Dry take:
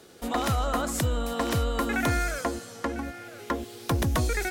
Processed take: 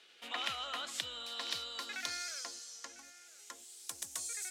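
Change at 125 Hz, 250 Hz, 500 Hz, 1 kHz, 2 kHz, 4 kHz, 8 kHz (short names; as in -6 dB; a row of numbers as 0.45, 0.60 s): -38.0, -29.5, -23.0, -15.5, -11.5, -1.0, -4.5 dB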